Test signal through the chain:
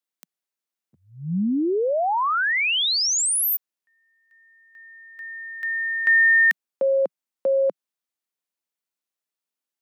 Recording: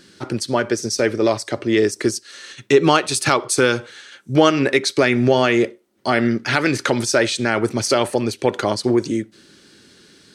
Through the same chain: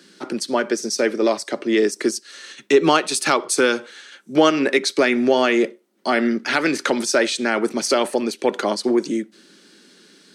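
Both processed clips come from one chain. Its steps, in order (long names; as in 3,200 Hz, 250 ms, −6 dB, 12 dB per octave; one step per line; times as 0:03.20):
Butterworth high-pass 170 Hz 48 dB per octave
level −1 dB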